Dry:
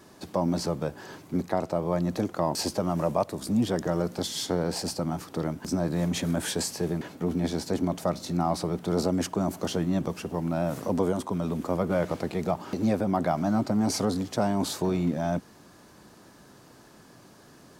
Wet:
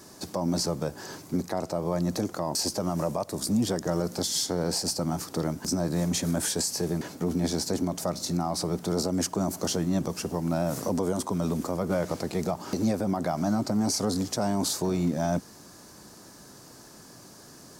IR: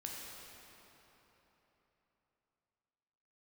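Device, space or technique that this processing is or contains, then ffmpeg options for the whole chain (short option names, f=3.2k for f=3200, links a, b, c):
over-bright horn tweeter: -af "highshelf=f=4.1k:t=q:w=1.5:g=6.5,alimiter=limit=-19.5dB:level=0:latency=1:release=154,volume=2dB"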